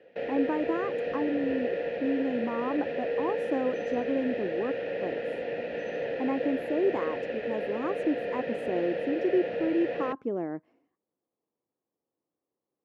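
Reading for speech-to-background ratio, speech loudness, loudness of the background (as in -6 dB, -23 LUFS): 1.0 dB, -32.0 LUFS, -33.0 LUFS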